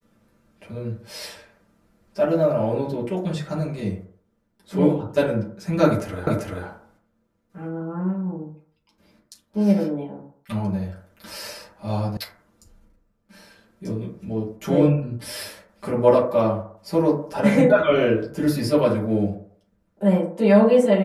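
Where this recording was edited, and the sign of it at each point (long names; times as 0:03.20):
0:06.27: the same again, the last 0.39 s
0:12.17: cut off before it has died away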